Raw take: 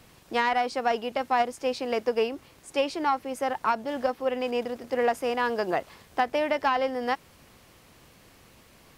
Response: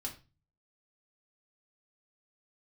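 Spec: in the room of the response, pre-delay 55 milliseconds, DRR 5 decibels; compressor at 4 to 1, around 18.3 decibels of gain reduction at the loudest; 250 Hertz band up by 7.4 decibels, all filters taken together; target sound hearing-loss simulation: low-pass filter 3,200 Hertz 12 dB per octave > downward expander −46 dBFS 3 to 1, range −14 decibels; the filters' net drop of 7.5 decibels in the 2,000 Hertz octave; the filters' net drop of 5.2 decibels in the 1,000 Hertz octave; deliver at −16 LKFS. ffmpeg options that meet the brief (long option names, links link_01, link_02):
-filter_complex "[0:a]equalizer=frequency=250:width_type=o:gain=8.5,equalizer=frequency=1000:width_type=o:gain=-7,equalizer=frequency=2000:width_type=o:gain=-6.5,acompressor=threshold=-43dB:ratio=4,asplit=2[link_01][link_02];[1:a]atrim=start_sample=2205,adelay=55[link_03];[link_02][link_03]afir=irnorm=-1:irlink=0,volume=-4dB[link_04];[link_01][link_04]amix=inputs=2:normalize=0,lowpass=3200,agate=range=-14dB:threshold=-46dB:ratio=3,volume=26dB"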